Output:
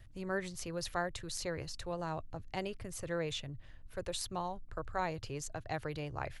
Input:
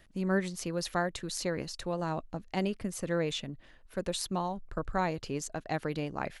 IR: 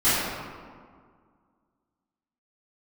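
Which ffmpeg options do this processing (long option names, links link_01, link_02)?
-filter_complex "[0:a]lowshelf=frequency=150:width_type=q:width=3:gain=10.5,acrossover=split=270|1900[link_01][link_02][link_03];[link_01]alimiter=level_in=12.5dB:limit=-24dB:level=0:latency=1,volume=-12.5dB[link_04];[link_04][link_02][link_03]amix=inputs=3:normalize=0,aeval=exprs='val(0)+0.000708*(sin(2*PI*60*n/s)+sin(2*PI*2*60*n/s)/2+sin(2*PI*3*60*n/s)/3+sin(2*PI*4*60*n/s)/4+sin(2*PI*5*60*n/s)/5)':channel_layout=same,volume=-4dB"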